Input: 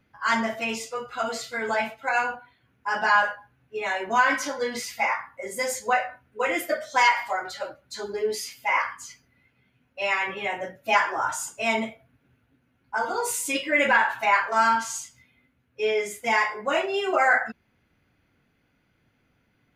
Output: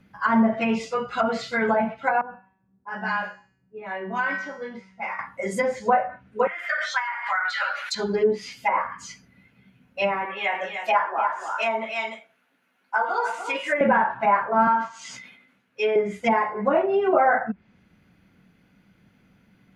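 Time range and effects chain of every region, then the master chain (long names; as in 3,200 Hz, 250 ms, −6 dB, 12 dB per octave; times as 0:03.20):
0:02.21–0:05.19: low-pass that shuts in the quiet parts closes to 600 Hz, open at −15 dBFS + tuned comb filter 190 Hz, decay 0.6 s, mix 80%
0:06.47–0:07.95: four-pole ladder high-pass 1,200 Hz, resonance 30% + envelope flattener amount 70%
0:10.25–0:13.81: high-pass filter 670 Hz + single-tap delay 296 ms −8 dB
0:14.67–0:15.96: meter weighting curve A + level that may fall only so fast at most 67 dB per second
whole clip: treble cut that deepens with the level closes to 920 Hz, closed at −22 dBFS; parametric band 190 Hz +13.5 dB 0.38 octaves; level +5.5 dB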